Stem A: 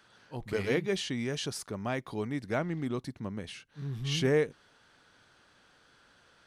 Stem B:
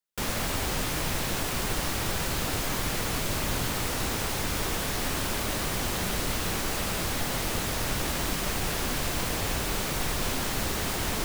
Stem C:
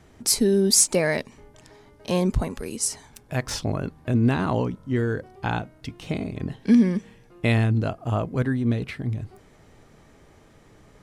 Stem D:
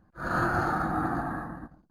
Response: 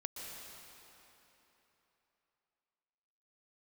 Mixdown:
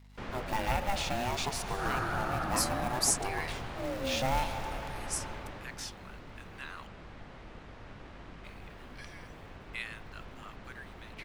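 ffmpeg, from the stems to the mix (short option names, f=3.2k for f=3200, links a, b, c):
-filter_complex "[0:a]acrusher=bits=4:mode=log:mix=0:aa=0.000001,aeval=exprs='val(0)*sin(2*PI*490*n/s+490*0.2/0.6*sin(2*PI*0.6*n/s))':c=same,volume=2dB,asplit=2[a][b];[b]volume=-5dB[c];[1:a]lowpass=2.3k,volume=-9dB,afade=t=out:st=5.22:d=0.6:silence=0.354813[d];[2:a]highpass=f=1.3k:w=0.5412,highpass=f=1.3k:w=1.3066,acrusher=bits=9:mix=0:aa=0.000001,adelay=2300,volume=-10.5dB,asplit=3[e][f][g];[e]atrim=end=6.87,asetpts=PTS-STARTPTS,afade=t=out:st=6.866:d=0.004:c=hsin[h];[f]atrim=start=6.87:end=8.44,asetpts=PTS-STARTPTS,volume=0[i];[g]atrim=start=8.44,asetpts=PTS-STARTPTS,afade=t=in:d=0.004:c=hsin[j];[h][i][j]concat=n=3:v=0:a=1[k];[3:a]adelay=1600,volume=-0.5dB[l];[a][l]amix=inputs=2:normalize=0,aeval=exprs='sgn(val(0))*max(abs(val(0))-0.00126,0)':c=same,acompressor=threshold=-30dB:ratio=6,volume=0dB[m];[4:a]atrim=start_sample=2205[n];[c][n]afir=irnorm=-1:irlink=0[o];[d][k][m][o]amix=inputs=4:normalize=0,adynamicequalizer=threshold=0.00447:dfrequency=250:dqfactor=1.1:tfrequency=250:tqfactor=1.1:attack=5:release=100:ratio=0.375:range=2.5:mode=cutabove:tftype=bell,aeval=exprs='val(0)+0.002*(sin(2*PI*50*n/s)+sin(2*PI*2*50*n/s)/2+sin(2*PI*3*50*n/s)/3+sin(2*PI*4*50*n/s)/4+sin(2*PI*5*50*n/s)/5)':c=same"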